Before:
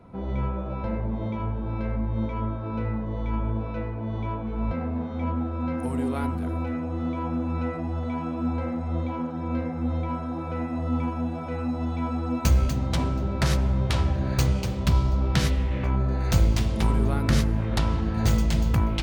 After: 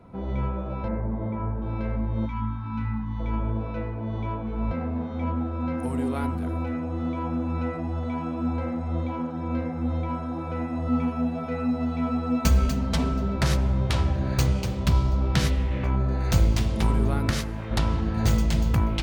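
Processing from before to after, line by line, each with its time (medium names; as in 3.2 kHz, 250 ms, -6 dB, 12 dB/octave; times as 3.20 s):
0.88–1.62 s: high-order bell 4.3 kHz -14 dB
2.26–3.20 s: time-frequency box 320–760 Hz -24 dB
10.88–13.36 s: comb 4.5 ms
17.30–17.71 s: bass shelf 400 Hz -9 dB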